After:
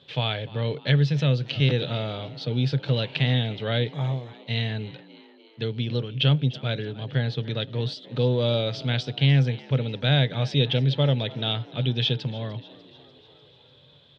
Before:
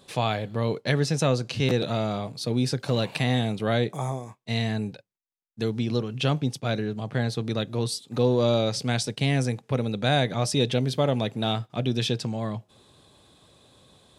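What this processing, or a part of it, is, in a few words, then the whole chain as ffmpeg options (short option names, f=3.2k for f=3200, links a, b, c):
frequency-shifting delay pedal into a guitar cabinet: -filter_complex "[0:a]asplit=6[a][b][c][d][e][f];[b]adelay=297,afreqshift=72,volume=-19dB[g];[c]adelay=594,afreqshift=144,volume=-23.3dB[h];[d]adelay=891,afreqshift=216,volume=-27.6dB[i];[e]adelay=1188,afreqshift=288,volume=-31.9dB[j];[f]adelay=1485,afreqshift=360,volume=-36.2dB[k];[a][g][h][i][j][k]amix=inputs=6:normalize=0,highpass=82,equalizer=f=140:t=q:w=4:g=9,equalizer=f=200:t=q:w=4:g=-10,equalizer=f=340:t=q:w=4:g=-6,equalizer=f=730:t=q:w=4:g=-7,equalizer=f=1.1k:t=q:w=4:g=-8,equalizer=f=3.2k:t=q:w=4:g=9,lowpass=f=4.1k:w=0.5412,lowpass=f=4.1k:w=1.3066,asettb=1/sr,asplit=3[l][m][n];[l]atrim=end=0.964[o];[m]atrim=start=0.96:end=1.46,asetpts=PTS-STARTPTS,afade=t=in:d=0.004:c=qsin,afade=t=out:st=0.496:d=0.004:c=qsin,equalizer=f=890:t=o:w=2.1:g=-4.5[p];[n]atrim=start=1.456[q];[o][p]acrossfade=d=0.004:c1=hsin:c2=qsin[r];[r][q]acrossfade=d=0.004:c1=qsin:c2=hsin"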